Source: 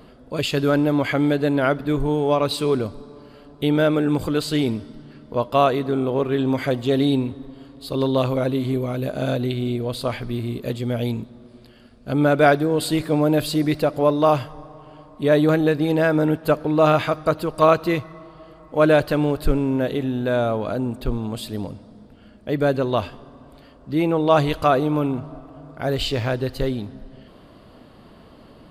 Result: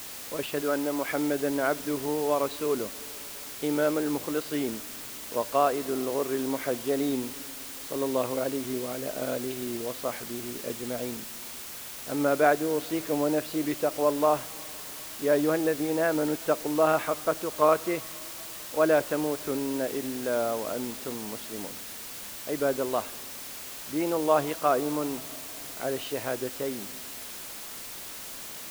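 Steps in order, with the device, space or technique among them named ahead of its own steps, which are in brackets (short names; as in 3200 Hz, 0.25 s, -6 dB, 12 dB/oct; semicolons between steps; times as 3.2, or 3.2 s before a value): wax cylinder (BPF 280–2200 Hz; wow and flutter; white noise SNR 11 dB); 0.62–1.09 HPF 260 Hz 6 dB/oct; gain -6 dB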